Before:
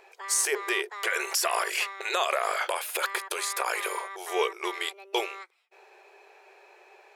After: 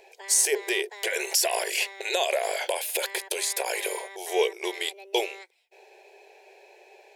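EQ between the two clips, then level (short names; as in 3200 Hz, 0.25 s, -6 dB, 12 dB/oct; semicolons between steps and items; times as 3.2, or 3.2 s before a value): fixed phaser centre 510 Hz, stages 4; +4.5 dB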